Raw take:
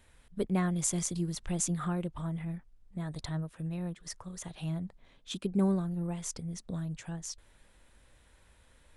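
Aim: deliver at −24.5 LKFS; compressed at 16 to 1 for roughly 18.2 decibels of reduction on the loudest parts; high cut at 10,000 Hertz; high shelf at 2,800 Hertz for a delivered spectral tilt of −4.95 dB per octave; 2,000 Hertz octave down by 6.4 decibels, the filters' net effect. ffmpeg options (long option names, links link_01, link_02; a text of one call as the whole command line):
ffmpeg -i in.wav -af "lowpass=10000,equalizer=frequency=2000:width_type=o:gain=-6,highshelf=frequency=2800:gain=-5.5,acompressor=threshold=-42dB:ratio=16,volume=23dB" out.wav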